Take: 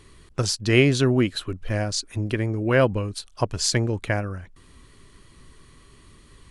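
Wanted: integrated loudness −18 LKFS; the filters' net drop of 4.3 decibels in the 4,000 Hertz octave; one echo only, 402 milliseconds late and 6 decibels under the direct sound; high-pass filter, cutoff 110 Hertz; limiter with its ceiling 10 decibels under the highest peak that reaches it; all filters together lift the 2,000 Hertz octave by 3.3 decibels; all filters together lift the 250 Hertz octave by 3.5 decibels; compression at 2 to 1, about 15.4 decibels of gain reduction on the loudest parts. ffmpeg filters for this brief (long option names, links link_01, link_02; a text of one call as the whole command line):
ffmpeg -i in.wav -af "highpass=110,equalizer=frequency=250:width_type=o:gain=4.5,equalizer=frequency=2000:width_type=o:gain=6,equalizer=frequency=4000:width_type=o:gain=-7.5,acompressor=threshold=-40dB:ratio=2,alimiter=level_in=2.5dB:limit=-24dB:level=0:latency=1,volume=-2.5dB,aecho=1:1:402:0.501,volume=19.5dB" out.wav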